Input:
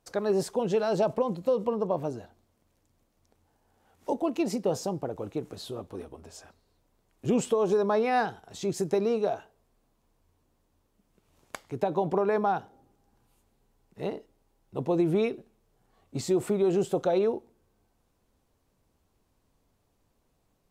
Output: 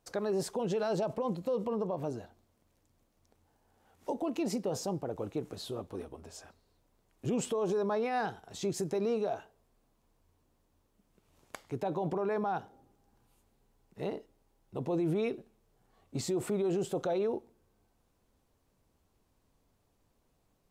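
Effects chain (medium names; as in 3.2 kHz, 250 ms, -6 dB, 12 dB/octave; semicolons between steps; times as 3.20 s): peak limiter -23 dBFS, peak gain reduction 9.5 dB; trim -1.5 dB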